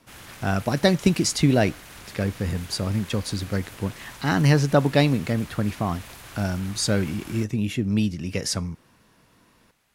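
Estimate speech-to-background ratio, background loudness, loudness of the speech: 18.5 dB, -42.5 LUFS, -24.0 LUFS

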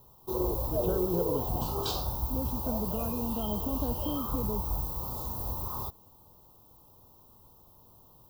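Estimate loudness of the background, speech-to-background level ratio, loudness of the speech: -32.5 LUFS, -3.5 dB, -36.0 LUFS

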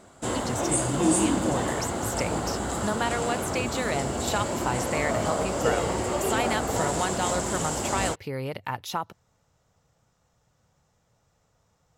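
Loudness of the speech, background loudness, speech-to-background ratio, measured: -31.5 LUFS, -27.5 LUFS, -4.0 dB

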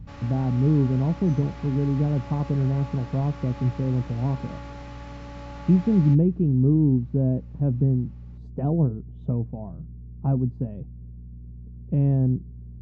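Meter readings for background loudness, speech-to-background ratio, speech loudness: -42.5 LUFS, 18.5 dB, -24.0 LUFS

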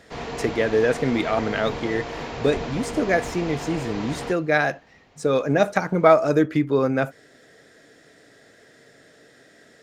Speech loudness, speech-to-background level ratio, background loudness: -22.5 LUFS, 10.0 dB, -32.5 LUFS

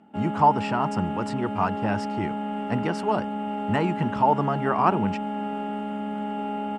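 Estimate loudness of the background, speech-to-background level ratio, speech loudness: -30.5 LUFS, 4.5 dB, -26.0 LUFS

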